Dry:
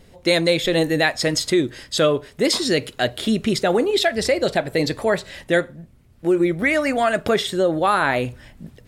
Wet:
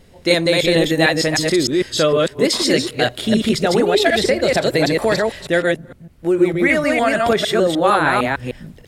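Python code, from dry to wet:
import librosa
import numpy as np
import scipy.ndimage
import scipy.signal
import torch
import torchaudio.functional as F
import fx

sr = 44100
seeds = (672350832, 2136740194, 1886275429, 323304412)

y = fx.reverse_delay(x, sr, ms=152, wet_db=-1.0)
y = fx.band_squash(y, sr, depth_pct=100, at=(4.06, 5.14))
y = y * librosa.db_to_amplitude(1.0)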